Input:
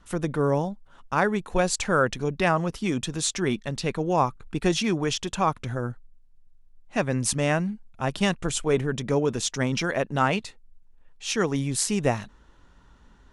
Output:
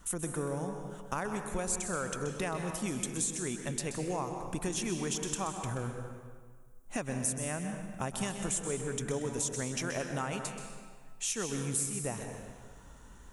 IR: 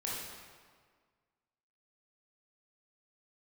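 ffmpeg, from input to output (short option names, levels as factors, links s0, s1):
-filter_complex "[0:a]aexciter=amount=8.2:drive=1.9:freq=6500,acompressor=threshold=0.0224:ratio=6,asplit=2[s0][s1];[1:a]atrim=start_sample=2205,adelay=129[s2];[s1][s2]afir=irnorm=-1:irlink=0,volume=0.422[s3];[s0][s3]amix=inputs=2:normalize=0"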